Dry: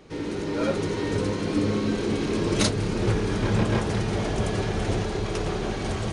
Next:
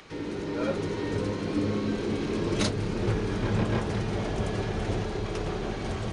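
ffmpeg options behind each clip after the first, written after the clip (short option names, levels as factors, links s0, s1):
-filter_complex "[0:a]highshelf=f=7500:g=-8.5,acrossover=split=440|850[s0][s1][s2];[s2]acompressor=mode=upward:threshold=0.01:ratio=2.5[s3];[s0][s1][s3]amix=inputs=3:normalize=0,volume=0.668"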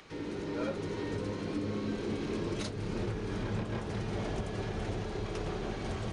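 -af "alimiter=limit=0.0944:level=0:latency=1:release=348,volume=0.596"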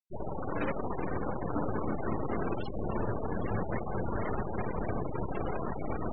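-af "aeval=exprs='0.0596*(cos(1*acos(clip(val(0)/0.0596,-1,1)))-cos(1*PI/2))+0.0211*(cos(7*acos(clip(val(0)/0.0596,-1,1)))-cos(7*PI/2))+0.0188*(cos(8*acos(clip(val(0)/0.0596,-1,1)))-cos(8*PI/2))':c=same,afftfilt=real='re*gte(hypot(re,im),0.0398)':imag='im*gte(hypot(re,im),0.0398)':win_size=1024:overlap=0.75"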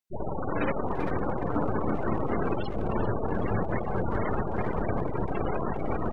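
-filter_complex "[0:a]asplit=2[s0][s1];[s1]adelay=390,highpass=300,lowpass=3400,asoftclip=type=hard:threshold=0.0282,volume=0.355[s2];[s0][s2]amix=inputs=2:normalize=0,volume=1.68"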